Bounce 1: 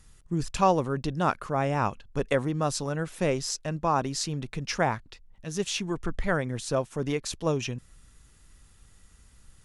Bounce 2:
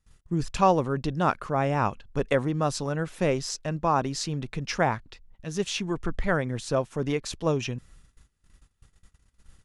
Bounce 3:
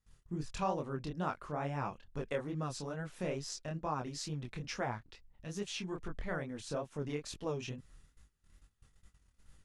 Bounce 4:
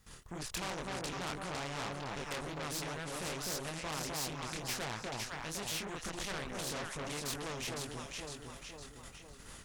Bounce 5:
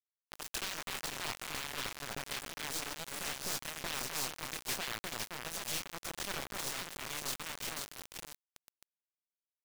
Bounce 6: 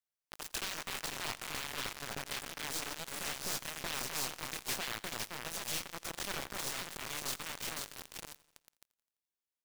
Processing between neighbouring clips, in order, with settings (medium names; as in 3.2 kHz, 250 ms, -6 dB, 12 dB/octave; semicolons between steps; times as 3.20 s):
gate -52 dBFS, range -20 dB; treble shelf 8.1 kHz -9 dB; trim +1.5 dB
compression 1.5:1, threshold -39 dBFS, peak gain reduction 8.5 dB; chorus 2.3 Hz, delay 19.5 ms, depth 7.9 ms; trim -3 dB
echo whose repeats swap between lows and highs 254 ms, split 870 Hz, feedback 55%, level -2 dB; valve stage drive 38 dB, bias 0.35; spectrum-flattening compressor 2:1; trim +10.5 dB
bit crusher 6-bit
feedback delay 85 ms, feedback 59%, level -21.5 dB